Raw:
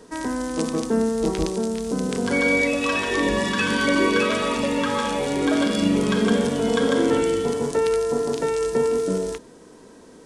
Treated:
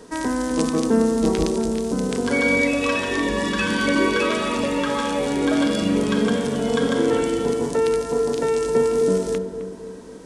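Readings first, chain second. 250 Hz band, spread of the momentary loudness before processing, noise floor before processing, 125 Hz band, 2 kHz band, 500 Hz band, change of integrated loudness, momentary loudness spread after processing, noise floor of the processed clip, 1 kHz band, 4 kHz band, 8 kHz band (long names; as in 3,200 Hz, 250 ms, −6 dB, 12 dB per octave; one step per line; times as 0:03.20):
+1.5 dB, 6 LU, −47 dBFS, +1.0 dB, 0.0 dB, +1.0 dB, +1.0 dB, 5 LU, −36 dBFS, +0.5 dB, 0.0 dB, +0.5 dB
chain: on a send: feedback echo with a low-pass in the loop 261 ms, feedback 52%, low-pass 880 Hz, level −7 dB
on the sum: speech leveller within 4 dB 2 s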